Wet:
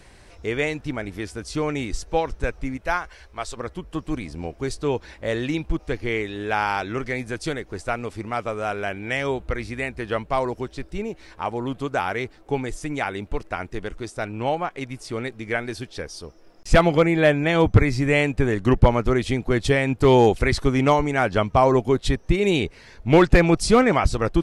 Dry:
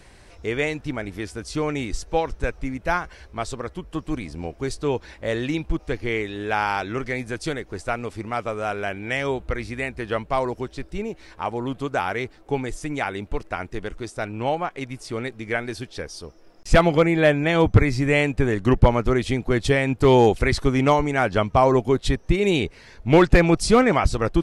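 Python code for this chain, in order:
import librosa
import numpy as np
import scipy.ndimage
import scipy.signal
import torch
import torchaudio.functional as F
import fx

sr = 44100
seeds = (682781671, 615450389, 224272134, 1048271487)

y = fx.peak_eq(x, sr, hz=170.0, db=fx.line((2.76, -7.0), (3.56, -13.5)), octaves=2.3, at=(2.76, 3.56), fade=0.02)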